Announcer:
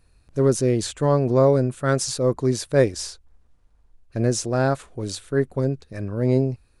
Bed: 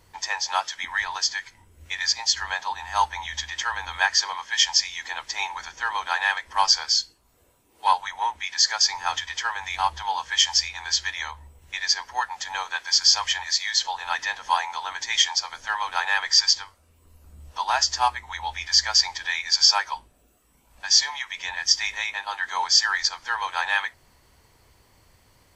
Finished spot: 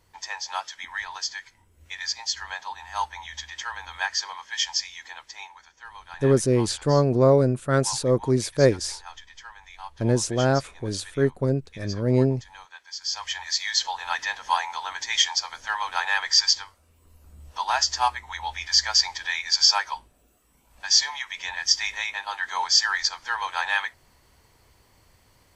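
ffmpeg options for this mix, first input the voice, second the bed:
-filter_complex "[0:a]adelay=5850,volume=0.944[s0];[1:a]volume=2.99,afade=t=out:st=4.82:d=0.8:silence=0.298538,afade=t=in:st=12.99:d=0.68:silence=0.16788[s1];[s0][s1]amix=inputs=2:normalize=0"

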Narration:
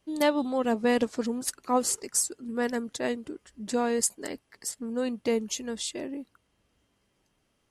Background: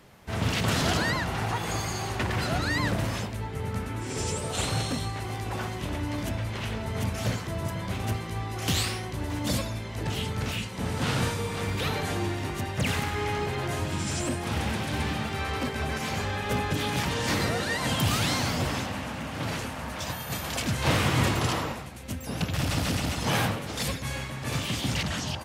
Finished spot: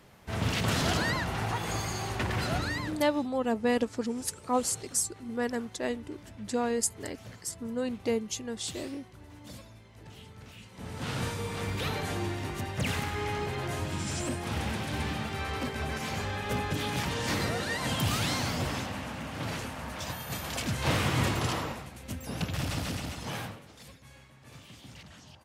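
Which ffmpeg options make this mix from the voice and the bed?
-filter_complex "[0:a]adelay=2800,volume=0.75[s0];[1:a]volume=4.22,afade=t=out:st=2.56:d=0.46:silence=0.158489,afade=t=in:st=10.56:d=0.94:silence=0.177828,afade=t=out:st=22.44:d=1.34:silence=0.141254[s1];[s0][s1]amix=inputs=2:normalize=0"

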